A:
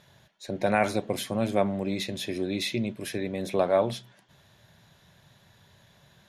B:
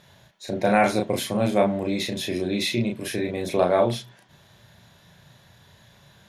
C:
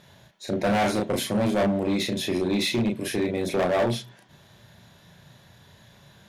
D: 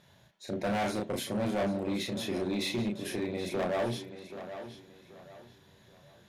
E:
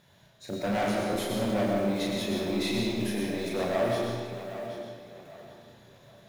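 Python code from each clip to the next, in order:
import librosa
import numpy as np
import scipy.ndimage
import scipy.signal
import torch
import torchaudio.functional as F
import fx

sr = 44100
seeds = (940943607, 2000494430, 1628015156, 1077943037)

y1 = fx.doubler(x, sr, ms=34.0, db=-3)
y1 = F.gain(torch.from_numpy(y1), 3.0).numpy()
y2 = fx.peak_eq(y1, sr, hz=270.0, db=3.0, octaves=1.6)
y2 = np.clip(10.0 ** (19.0 / 20.0) * y2, -1.0, 1.0) / 10.0 ** (19.0 / 20.0)
y3 = fx.echo_tape(y2, sr, ms=780, feedback_pct=34, wet_db=-9.5, lp_hz=5400.0, drive_db=17.0, wow_cents=34)
y3 = F.gain(torch.from_numpy(y3), -8.0).numpy()
y4 = fx.block_float(y3, sr, bits=5)
y4 = fx.rev_freeverb(y4, sr, rt60_s=1.6, hf_ratio=0.75, predelay_ms=65, drr_db=-1.0)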